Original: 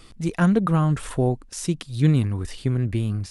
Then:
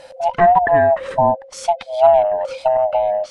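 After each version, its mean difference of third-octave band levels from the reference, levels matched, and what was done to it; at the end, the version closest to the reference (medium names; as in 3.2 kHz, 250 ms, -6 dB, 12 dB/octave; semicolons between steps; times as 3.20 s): 11.5 dB: split-band scrambler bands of 500 Hz; low-pass that closes with the level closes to 2.1 kHz, closed at -19 dBFS; treble shelf 5 kHz -7.5 dB; trim +6.5 dB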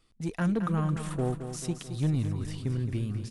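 5.5 dB: saturation -13 dBFS, distortion -17 dB; gate -39 dBFS, range -13 dB; on a send: feedback delay 219 ms, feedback 57%, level -9.5 dB; on the sum: trim -7 dB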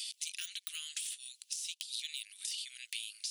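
22.0 dB: de-esser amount 85%; steep high-pass 2.9 kHz 36 dB/octave; compression 6:1, threshold -54 dBFS, peak gain reduction 14.5 dB; trim +16 dB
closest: second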